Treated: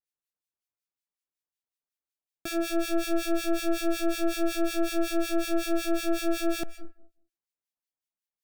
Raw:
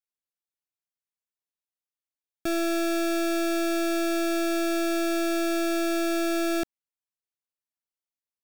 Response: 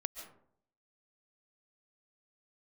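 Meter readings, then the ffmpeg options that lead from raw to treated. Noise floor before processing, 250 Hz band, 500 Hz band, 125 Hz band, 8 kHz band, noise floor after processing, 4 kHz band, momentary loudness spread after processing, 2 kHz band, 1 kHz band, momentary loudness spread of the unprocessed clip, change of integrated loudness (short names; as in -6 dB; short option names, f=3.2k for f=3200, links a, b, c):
under -85 dBFS, -2.5 dB, -2.5 dB, n/a, -2.0 dB, under -85 dBFS, -2.0 dB, 3 LU, -4.0 dB, -3.5 dB, 2 LU, -2.5 dB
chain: -filter_complex "[0:a]asplit=2[a][b];[1:a]atrim=start_sample=2205[c];[b][c]afir=irnorm=-1:irlink=0,volume=-2dB[d];[a][d]amix=inputs=2:normalize=0,acrossover=split=1500[e][f];[e]aeval=exprs='val(0)*(1-1/2+1/2*cos(2*PI*5.4*n/s))':c=same[g];[f]aeval=exprs='val(0)*(1-1/2-1/2*cos(2*PI*5.4*n/s))':c=same[h];[g][h]amix=inputs=2:normalize=0,volume=-2.5dB"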